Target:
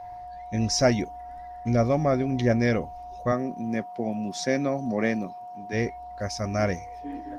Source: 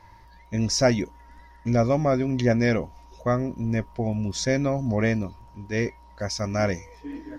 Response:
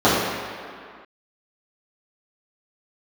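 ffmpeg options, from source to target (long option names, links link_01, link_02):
-filter_complex "[0:a]asplit=3[link_01][link_02][link_03];[link_01]afade=type=out:start_time=3.31:duration=0.02[link_04];[link_02]highpass=frequency=160:width=0.5412,highpass=frequency=160:width=1.3066,afade=type=in:start_time=3.31:duration=0.02,afade=type=out:start_time=5.72:duration=0.02[link_05];[link_03]afade=type=in:start_time=5.72:duration=0.02[link_06];[link_04][link_05][link_06]amix=inputs=3:normalize=0,aeval=exprs='val(0)+0.0158*sin(2*PI*720*n/s)':channel_layout=same,volume=-1dB" -ar 48000 -c:a libopus -b:a 32k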